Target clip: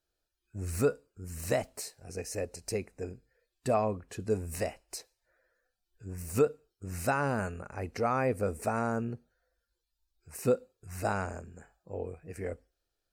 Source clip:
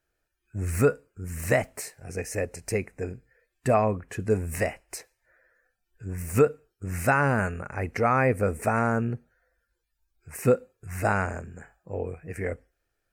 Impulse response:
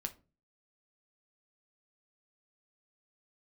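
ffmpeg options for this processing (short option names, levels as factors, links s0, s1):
-af "equalizer=f=125:t=o:w=1:g=-4,equalizer=f=2000:t=o:w=1:g=-9,equalizer=f=4000:t=o:w=1:g=9,volume=0.562"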